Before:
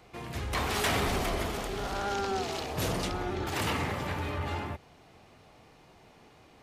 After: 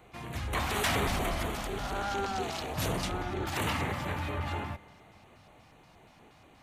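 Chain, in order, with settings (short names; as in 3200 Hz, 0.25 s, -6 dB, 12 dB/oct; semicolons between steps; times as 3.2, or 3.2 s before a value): LFO notch square 4.2 Hz 420–5100 Hz; spring tank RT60 3.2 s, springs 39 ms, chirp 75 ms, DRR 19 dB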